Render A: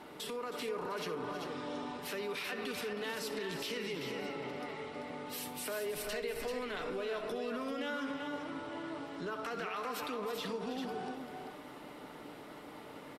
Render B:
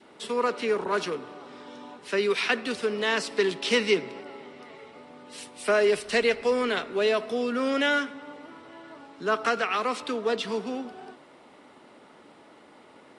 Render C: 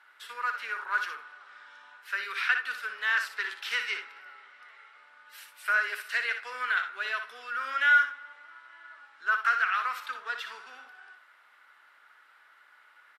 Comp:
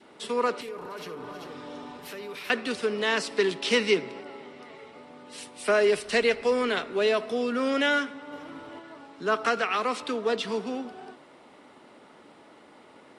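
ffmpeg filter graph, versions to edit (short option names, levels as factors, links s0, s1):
-filter_complex "[0:a]asplit=2[s0][s1];[1:a]asplit=3[s2][s3][s4];[s2]atrim=end=0.612[s5];[s0]atrim=start=0.608:end=2.502[s6];[s3]atrim=start=2.498:end=8.322[s7];[s1]atrim=start=8.318:end=8.792[s8];[s4]atrim=start=8.788[s9];[s5][s6]acrossfade=d=0.004:c1=hsin:c2=hsin[s10];[s10][s7]acrossfade=d=0.004:c1=hsin:c2=hsin[s11];[s11][s8]acrossfade=d=0.004:c1=hsin:c2=hsin[s12];[s12][s9]acrossfade=d=0.004:c1=hsin:c2=hsin"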